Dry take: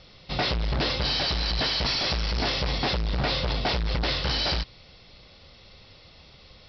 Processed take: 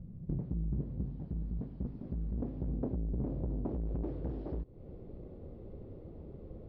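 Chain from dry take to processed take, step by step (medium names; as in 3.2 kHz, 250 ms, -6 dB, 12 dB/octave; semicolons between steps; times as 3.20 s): 2.68–3.74 s: tilt shelf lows +3.5 dB, about 760 Hz; compression 12:1, threshold -38 dBFS, peak gain reduction 18 dB; low-pass sweep 180 Hz -> 370 Hz, 0.81–4.63 s; loudspeaker Doppler distortion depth 0.99 ms; trim +5.5 dB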